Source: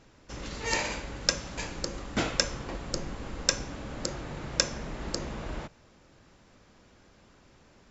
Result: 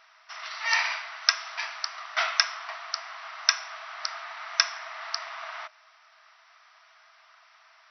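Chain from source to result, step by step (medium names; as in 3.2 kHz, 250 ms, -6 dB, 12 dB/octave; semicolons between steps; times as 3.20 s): graphic EQ with 31 bands 800 Hz -7 dB, 1.25 kHz +7 dB, 2 kHz +5 dB; FFT band-pass 620–6000 Hz; trim +4.5 dB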